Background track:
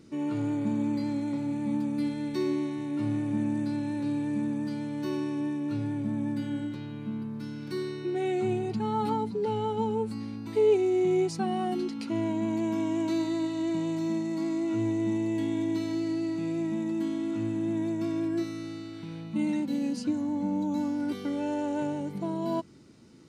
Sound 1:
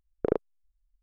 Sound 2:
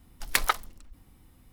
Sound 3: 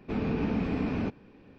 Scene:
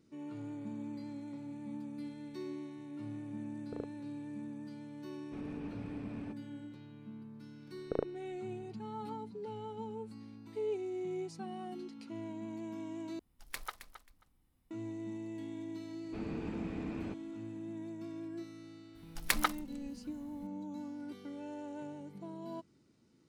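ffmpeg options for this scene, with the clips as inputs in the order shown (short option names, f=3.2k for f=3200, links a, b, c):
-filter_complex "[1:a]asplit=2[a][b];[3:a]asplit=2[c][d];[2:a]asplit=2[e][f];[0:a]volume=-14dB[g];[e]aecho=1:1:268|536:0.251|0.0427[h];[g]asplit=2[i][j];[i]atrim=end=13.194[k];[h]atrim=end=1.52,asetpts=PTS-STARTPTS,volume=-18dB[l];[j]atrim=start=14.706[m];[a]atrim=end=1.02,asetpts=PTS-STARTPTS,volume=-17.5dB,afade=t=in:d=0.004:c=hsin,afade=t=out:st=1.016:d=0.004:c=hsin,adelay=3480[n];[c]atrim=end=1.58,asetpts=PTS-STARTPTS,volume=-16.5dB,afade=t=in:d=0.004:c=hsin,afade=t=out:st=1.576:d=0.004:c=hsin,adelay=5230[o];[b]atrim=end=1.02,asetpts=PTS-STARTPTS,volume=-8dB,afade=t=in:d=0.004:c=hsin,afade=t=out:st=1.016:d=0.004:c=hsin,adelay=7670[p];[d]atrim=end=1.58,asetpts=PTS-STARTPTS,volume=-11.5dB,afade=t=in:d=0.004:c=hsin,afade=t=out:st=1.576:d=0.004:c=hsin,adelay=707364S[q];[f]atrim=end=1.52,asetpts=PTS-STARTPTS,volume=-6dB,afade=t=in:d=0.004:c=hsin,afade=t=out:st=1.516:d=0.004:c=hsin,adelay=18950[r];[k][l]acrossfade=d=0.004:c1=hsin:c2=hsin[s];[s][m]acrossfade=d=0.004:c1=hsin:c2=hsin[t];[t][n][o][p][q][r]amix=inputs=6:normalize=0"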